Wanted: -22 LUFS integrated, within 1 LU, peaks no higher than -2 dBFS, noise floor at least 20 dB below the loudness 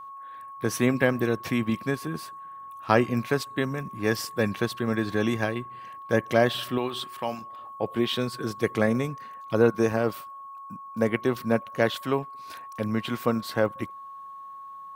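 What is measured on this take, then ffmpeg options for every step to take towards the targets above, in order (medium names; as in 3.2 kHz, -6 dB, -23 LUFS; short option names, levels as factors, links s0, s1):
steady tone 1.1 kHz; tone level -39 dBFS; loudness -27.0 LUFS; peak level -4.5 dBFS; loudness target -22.0 LUFS
-> -af "bandreject=f=1100:w=30"
-af "volume=1.78,alimiter=limit=0.794:level=0:latency=1"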